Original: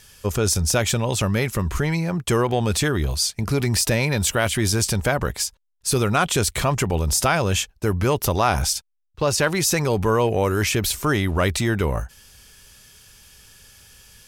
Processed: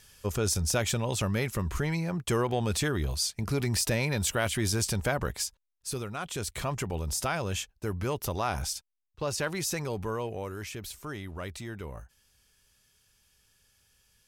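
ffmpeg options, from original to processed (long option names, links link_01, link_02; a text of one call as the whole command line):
ffmpeg -i in.wav -af "volume=-0.5dB,afade=type=out:start_time=5.44:duration=0.68:silence=0.298538,afade=type=in:start_time=6.12:duration=0.55:silence=0.446684,afade=type=out:start_time=9.64:duration=0.99:silence=0.446684" out.wav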